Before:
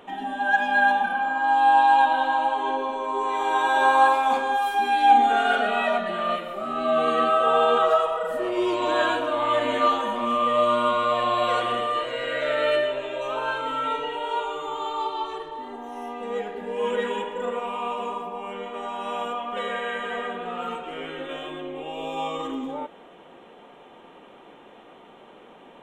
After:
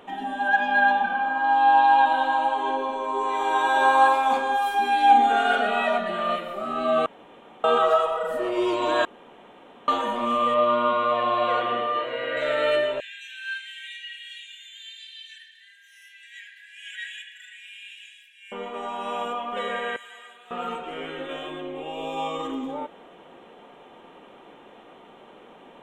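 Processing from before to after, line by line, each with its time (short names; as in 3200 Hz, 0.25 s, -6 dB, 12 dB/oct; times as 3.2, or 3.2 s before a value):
0.48–2.06 LPF 5100 Hz
7.06–7.64 room tone
9.05–9.88 room tone
10.54–12.37 BPF 130–3100 Hz
13–18.52 brick-wall FIR high-pass 1500 Hz
19.96–20.51 differentiator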